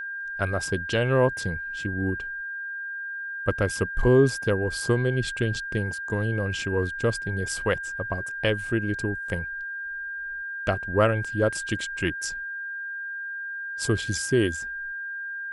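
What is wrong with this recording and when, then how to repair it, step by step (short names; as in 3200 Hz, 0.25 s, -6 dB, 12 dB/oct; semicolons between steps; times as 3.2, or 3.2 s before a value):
tone 1600 Hz -31 dBFS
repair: notch 1600 Hz, Q 30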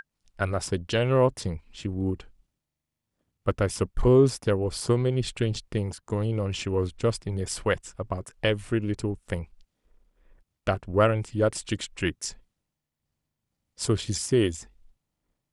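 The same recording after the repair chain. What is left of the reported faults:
none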